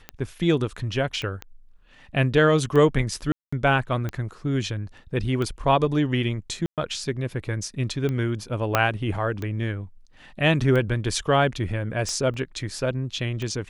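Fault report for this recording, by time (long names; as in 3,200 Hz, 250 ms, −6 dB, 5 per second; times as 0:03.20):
scratch tick 45 rpm −17 dBFS
0:01.22: click −18 dBFS
0:03.32–0:03.52: drop-out 205 ms
0:06.66–0:06.78: drop-out 117 ms
0:08.75: click −4 dBFS
0:12.34: drop-out 3.5 ms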